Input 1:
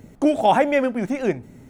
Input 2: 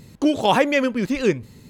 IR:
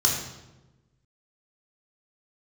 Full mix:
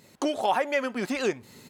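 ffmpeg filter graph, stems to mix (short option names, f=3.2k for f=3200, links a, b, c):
-filter_complex "[0:a]agate=range=-33dB:threshold=-41dB:ratio=3:detection=peak,highpass=630,aecho=1:1:5.5:0.65,volume=-3dB[a];[1:a]highpass=f=550:p=1,dynaudnorm=f=130:g=3:m=8.5dB,volume=-5dB[b];[a][b]amix=inputs=2:normalize=0,acompressor=threshold=-28dB:ratio=2"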